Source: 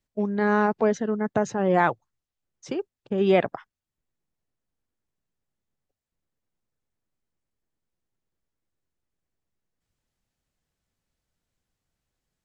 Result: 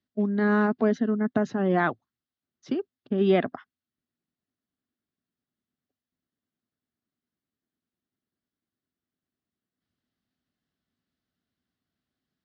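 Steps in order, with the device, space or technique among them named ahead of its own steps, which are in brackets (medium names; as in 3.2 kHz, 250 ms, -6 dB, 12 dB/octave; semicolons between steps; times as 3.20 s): guitar cabinet (cabinet simulation 110–4600 Hz, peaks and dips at 130 Hz -4 dB, 250 Hz +8 dB, 510 Hz -8 dB, 900 Hz -9 dB, 2.4 kHz -7 dB)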